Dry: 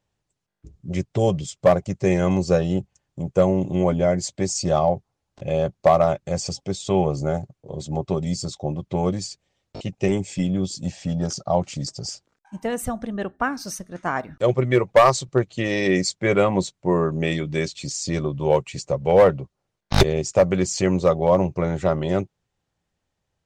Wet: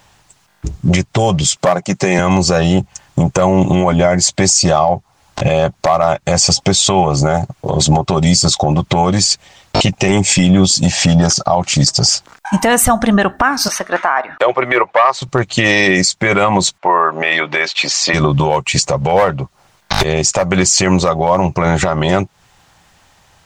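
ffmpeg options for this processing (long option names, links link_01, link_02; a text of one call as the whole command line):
ffmpeg -i in.wav -filter_complex "[0:a]asettb=1/sr,asplit=3[link_01][link_02][link_03];[link_01]atrim=end=1.574[link_04];[link_02]atrim=start=1.57:end=2.19,asetpts=PTS-STARTPTS,afade=type=in:duration=0.004:curve=qsin,afade=type=out:start_time=0.616:duration=0.004:curve=qsin,highpass=frequency=150:width=0.5412,highpass=frequency=150:width=1.3066[link_05];[link_03]atrim=start=2.186[link_06];[link_04][link_05]acrossfade=duration=0.004:curve1=hsin:curve2=qsin[link_07];[link_07][link_06]acrossfade=duration=0.004:curve1=qsin:curve2=hsin,asettb=1/sr,asplit=3[link_08][link_09][link_10];[link_08]atrim=end=13.684[link_11];[link_09]atrim=start=13.68:end=15.22,asetpts=PTS-STARTPTS,afade=type=in:duration=0.004:curve=qsin,afade=type=out:start_time=1.536:duration=0.004:curve=qsin,acrossover=split=360 3400:gain=0.0631 1 0.112[link_12][link_13][link_14];[link_12][link_13][link_14]amix=inputs=3:normalize=0[link_15];[link_10]atrim=start=15.216[link_16];[link_11][link_15]acrossfade=duration=0.004:curve1=hsin:curve2=qsin[link_17];[link_17][link_16]acrossfade=duration=0.004:curve1=qsin:curve2=hsin,asplit=3[link_18][link_19][link_20];[link_18]afade=type=out:start_time=16.77:duration=0.02[link_21];[link_19]highpass=630,lowpass=2400,afade=type=in:start_time=16.77:duration=0.02,afade=type=out:start_time=18.13:duration=0.02[link_22];[link_20]afade=type=in:start_time=18.13:duration=0.02[link_23];[link_21][link_22][link_23]amix=inputs=3:normalize=0,lowshelf=frequency=640:width_type=q:width=1.5:gain=-7,acompressor=threshold=-37dB:ratio=5,alimiter=level_in=31.5dB:limit=-1dB:release=50:level=0:latency=1,volume=-1dB" out.wav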